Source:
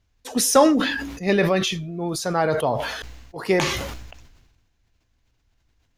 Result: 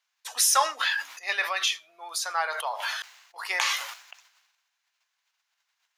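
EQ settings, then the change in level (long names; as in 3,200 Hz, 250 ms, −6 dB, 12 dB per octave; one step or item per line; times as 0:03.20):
high-pass filter 930 Hz 24 dB per octave
0.0 dB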